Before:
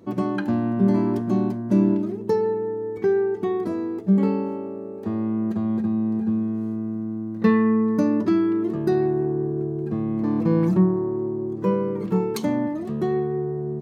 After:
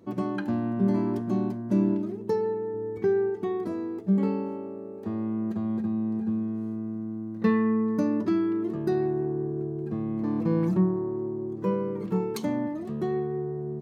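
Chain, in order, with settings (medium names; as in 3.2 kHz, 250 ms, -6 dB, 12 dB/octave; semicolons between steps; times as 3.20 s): 2.74–3.30 s: bass shelf 180 Hz +8 dB; trim -5 dB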